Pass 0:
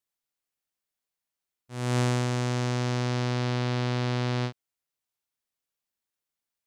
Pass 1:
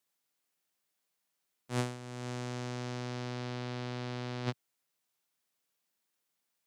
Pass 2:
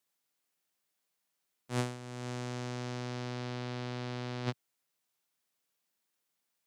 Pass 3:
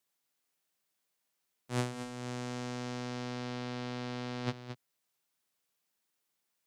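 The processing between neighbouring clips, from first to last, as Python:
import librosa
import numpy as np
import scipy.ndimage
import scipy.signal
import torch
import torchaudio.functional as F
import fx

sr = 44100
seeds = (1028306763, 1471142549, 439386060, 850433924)

y1 = scipy.signal.sosfilt(scipy.signal.butter(4, 120.0, 'highpass', fs=sr, output='sos'), x)
y1 = fx.over_compress(y1, sr, threshold_db=-34.0, ratio=-0.5)
y1 = y1 * librosa.db_to_amplitude(-2.0)
y2 = y1
y3 = y2 + 10.0 ** (-9.5 / 20.0) * np.pad(y2, (int(223 * sr / 1000.0), 0))[:len(y2)]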